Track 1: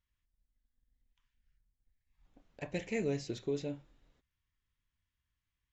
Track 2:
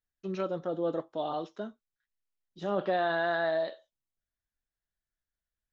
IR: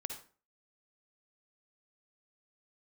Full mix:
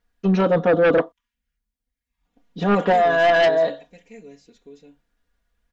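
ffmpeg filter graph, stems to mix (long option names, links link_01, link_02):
-filter_complex "[0:a]highpass=frequency=95:poles=1,volume=-10dB,asplit=3[link_01][link_02][link_03];[link_02]volume=-11.5dB[link_04];[1:a]lowpass=frequency=1700:poles=1,acontrast=64,volume=2dB,asplit=3[link_05][link_06][link_07];[link_05]atrim=end=1.12,asetpts=PTS-STARTPTS,afade=type=out:start_time=1.116:duration=0.004:curve=hsin[link_08];[link_06]atrim=start=1.12:end=2.37,asetpts=PTS-STARTPTS,volume=0[link_09];[link_07]atrim=start=2.37,asetpts=PTS-STARTPTS,afade=type=in:duration=0.004:curve=hsin[link_10];[link_08][link_09][link_10]concat=n=3:v=0:a=1[link_11];[link_03]apad=whole_len=252583[link_12];[link_11][link_12]sidechaincompress=threshold=-52dB:ratio=3:attack=33:release=206[link_13];[link_04]aecho=0:1:1187:1[link_14];[link_01][link_13][link_14]amix=inputs=3:normalize=0,aecho=1:1:4.2:0.86,aeval=exprs='0.335*(cos(1*acos(clip(val(0)/0.335,-1,1)))-cos(1*PI/2))+0.133*(cos(5*acos(clip(val(0)/0.335,-1,1)))-cos(5*PI/2))':channel_layout=same"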